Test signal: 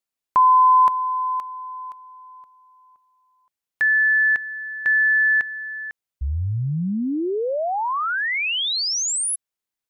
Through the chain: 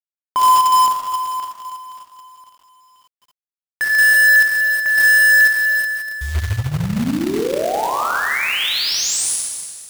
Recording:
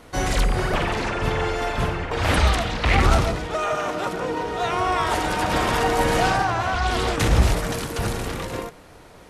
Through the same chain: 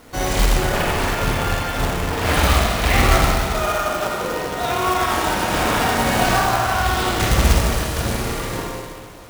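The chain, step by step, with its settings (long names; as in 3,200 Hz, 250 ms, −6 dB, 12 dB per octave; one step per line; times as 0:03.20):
four-comb reverb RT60 1.8 s, combs from 27 ms, DRR −2.5 dB
log-companded quantiser 4 bits
level −1 dB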